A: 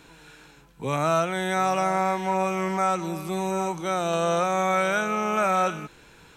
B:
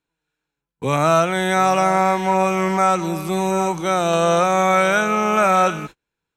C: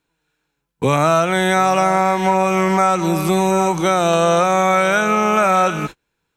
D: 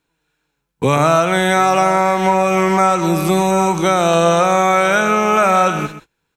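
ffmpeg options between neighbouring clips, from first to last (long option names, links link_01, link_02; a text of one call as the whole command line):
ffmpeg -i in.wav -af "agate=range=-38dB:threshold=-40dB:ratio=16:detection=peak,volume=7dB" out.wav
ffmpeg -i in.wav -af "acompressor=threshold=-22dB:ratio=3,volume=8.5dB" out.wav
ffmpeg -i in.wav -af "aecho=1:1:125:0.237,volume=1.5dB" out.wav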